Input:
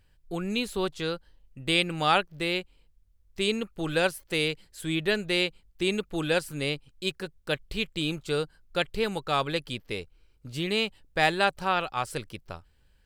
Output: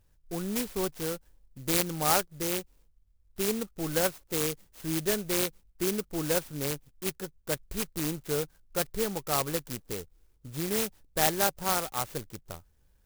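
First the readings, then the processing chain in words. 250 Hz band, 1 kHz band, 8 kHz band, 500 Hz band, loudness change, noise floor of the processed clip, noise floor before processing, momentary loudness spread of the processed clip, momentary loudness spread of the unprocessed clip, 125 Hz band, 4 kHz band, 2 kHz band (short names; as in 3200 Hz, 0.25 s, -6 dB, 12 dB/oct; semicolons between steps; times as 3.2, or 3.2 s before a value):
-2.0 dB, -4.0 dB, +11.0 dB, -2.5 dB, -1.5 dB, -65 dBFS, -63 dBFS, 13 LU, 12 LU, -2.0 dB, -6.5 dB, -8.0 dB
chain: high shelf 10000 Hz -9.5 dB; clock jitter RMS 0.12 ms; gain -2 dB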